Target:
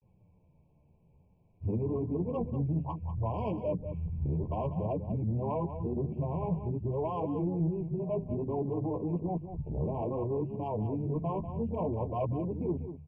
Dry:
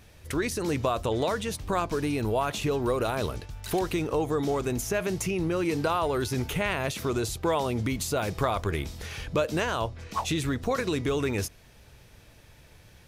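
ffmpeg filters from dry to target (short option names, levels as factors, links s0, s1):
-af "areverse,lowpass=f=1800:w=0.5412,lowpass=f=1800:w=1.3066,aemphasis=mode=reproduction:type=cd,bandreject=f=50:t=h:w=6,bandreject=f=100:t=h:w=6,bandreject=f=150:t=h:w=6,bandreject=f=200:t=h:w=6,bandreject=f=250:t=h:w=6,afwtdn=0.0316,equalizer=f=160:t=o:w=1:g=12.5,acompressor=threshold=0.0282:ratio=5,flanger=delay=9.4:depth=4.1:regen=7:speed=0.57:shape=sinusoidal,asoftclip=type=tanh:threshold=0.0398,aecho=1:1:193:0.316,afftfilt=real='re*eq(mod(floor(b*sr/1024/1100),2),0)':imag='im*eq(mod(floor(b*sr/1024/1100),2),0)':win_size=1024:overlap=0.75,volume=1.78"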